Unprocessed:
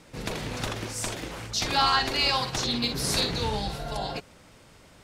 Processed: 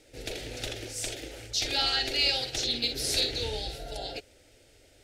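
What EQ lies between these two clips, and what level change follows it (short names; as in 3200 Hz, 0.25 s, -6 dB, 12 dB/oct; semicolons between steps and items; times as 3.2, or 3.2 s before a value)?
fixed phaser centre 440 Hz, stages 4; dynamic EQ 3300 Hz, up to +4 dB, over -41 dBFS, Q 0.87; -2.5 dB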